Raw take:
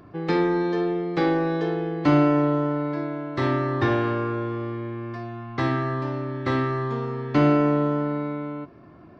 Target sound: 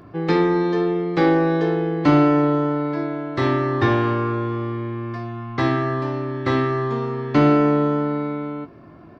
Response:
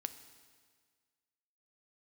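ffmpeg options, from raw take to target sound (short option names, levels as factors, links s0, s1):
-filter_complex "[0:a]asplit=2[s0][s1];[s1]adelay=18,volume=0.266[s2];[s0][s2]amix=inputs=2:normalize=0,volume=1.5"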